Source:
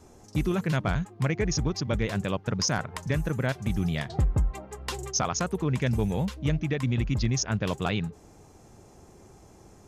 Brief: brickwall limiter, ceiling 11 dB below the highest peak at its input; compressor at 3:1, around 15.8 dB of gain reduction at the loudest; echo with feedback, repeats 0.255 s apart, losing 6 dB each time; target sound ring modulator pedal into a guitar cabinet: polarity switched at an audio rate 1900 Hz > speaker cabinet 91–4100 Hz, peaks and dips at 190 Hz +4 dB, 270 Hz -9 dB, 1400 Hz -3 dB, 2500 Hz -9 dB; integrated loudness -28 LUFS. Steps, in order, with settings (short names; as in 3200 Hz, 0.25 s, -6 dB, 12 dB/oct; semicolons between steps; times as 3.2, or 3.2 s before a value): compressor 3:1, threshold -43 dBFS; limiter -36.5 dBFS; feedback echo 0.255 s, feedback 50%, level -6 dB; polarity switched at an audio rate 1900 Hz; speaker cabinet 91–4100 Hz, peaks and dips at 190 Hz +4 dB, 270 Hz -9 dB, 1400 Hz -3 dB, 2500 Hz -9 dB; gain +17.5 dB